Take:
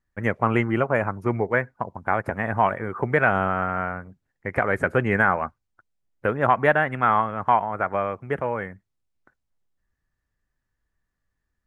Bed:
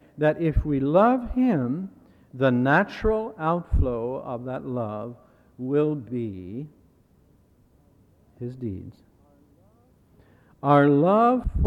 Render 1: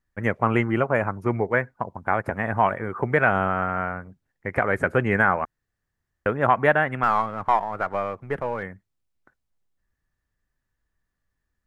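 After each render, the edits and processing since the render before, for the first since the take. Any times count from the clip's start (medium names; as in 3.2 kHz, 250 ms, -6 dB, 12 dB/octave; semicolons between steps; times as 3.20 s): 5.45–6.26 s: room tone; 7.03–8.63 s: partial rectifier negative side -3 dB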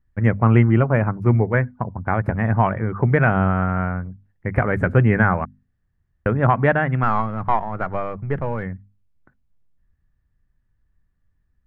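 tone controls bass +14 dB, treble -11 dB; hum notches 50/100/150/200/250 Hz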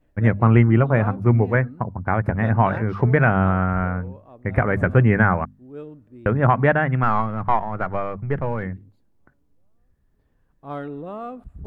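add bed -14.5 dB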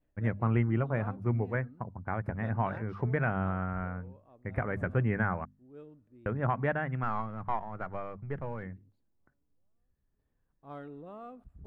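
trim -13 dB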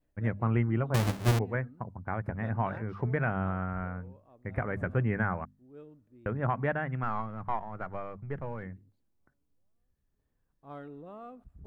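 0.94–1.39 s: square wave that keeps the level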